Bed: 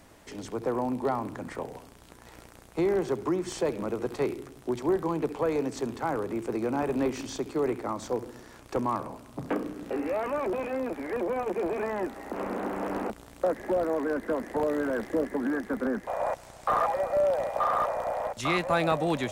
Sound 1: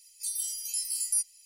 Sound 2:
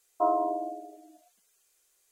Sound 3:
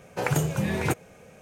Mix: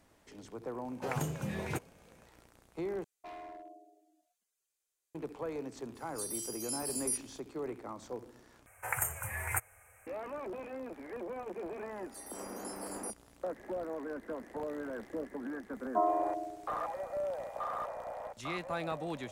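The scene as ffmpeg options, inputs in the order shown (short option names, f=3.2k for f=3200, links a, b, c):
-filter_complex "[3:a]asplit=2[a][b];[2:a]asplit=2[c][d];[1:a]asplit=2[e][f];[0:a]volume=-11.5dB[g];[c]asoftclip=type=hard:threshold=-27.5dB[h];[e]acontrast=23[i];[b]firequalizer=gain_entry='entry(100,0);entry(160,-29);entry(320,-21);entry(760,-2);entry(1300,2);entry(2100,4);entry(3900,-28);entry(8100,10);entry(15000,12)':delay=0.05:min_phase=1[j];[g]asplit=3[k][l][m];[k]atrim=end=3.044[n];[h]atrim=end=2.11,asetpts=PTS-STARTPTS,volume=-17dB[o];[l]atrim=start=5.146:end=8.664[p];[j]atrim=end=1.41,asetpts=PTS-STARTPTS,volume=-6.5dB[q];[m]atrim=start=10.066[r];[a]atrim=end=1.41,asetpts=PTS-STARTPTS,volume=-11dB,afade=t=in:d=0.004:c=hsin,afade=t=out:st=1.406:d=0.004:c=hsin,adelay=850[s];[i]atrim=end=1.45,asetpts=PTS-STARTPTS,volume=-12dB,afade=t=in:d=0.004:c=hsin,afade=t=out:st=1.446:d=0.004:c=hsin,adelay=5950[t];[f]atrim=end=1.45,asetpts=PTS-STARTPTS,volume=-16.5dB,afade=t=in:d=0.004:c=hsin,afade=t=out:st=1.446:d=0.004:c=hsin,adelay=11910[u];[d]atrim=end=2.11,asetpts=PTS-STARTPTS,volume=-4dB,afade=t=in:d=0.004:c=hsin,afade=t=out:st=2.106:d=0.004:c=hsin,adelay=15750[v];[n][o]acrossfade=d=0.004:c1=hsin:c2=hsin[w];[w][p]acrossfade=d=0.004:c1=hsin:c2=hsin[x];[x][q]acrossfade=d=0.004:c1=hsin:c2=hsin[y];[y][r]acrossfade=d=0.004:c1=hsin:c2=hsin[z];[z][s][t][u][v]amix=inputs=5:normalize=0"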